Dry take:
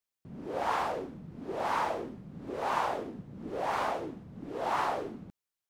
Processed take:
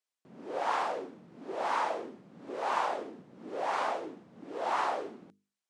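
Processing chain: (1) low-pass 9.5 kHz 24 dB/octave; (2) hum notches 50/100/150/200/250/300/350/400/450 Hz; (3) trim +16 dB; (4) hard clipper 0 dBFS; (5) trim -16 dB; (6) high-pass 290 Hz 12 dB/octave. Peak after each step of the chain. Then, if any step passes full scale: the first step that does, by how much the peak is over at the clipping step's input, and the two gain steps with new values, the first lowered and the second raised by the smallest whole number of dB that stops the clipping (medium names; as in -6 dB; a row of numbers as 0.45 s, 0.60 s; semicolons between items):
-17.5 dBFS, -17.5 dBFS, -1.5 dBFS, -1.5 dBFS, -17.5 dBFS, -17.5 dBFS; nothing clips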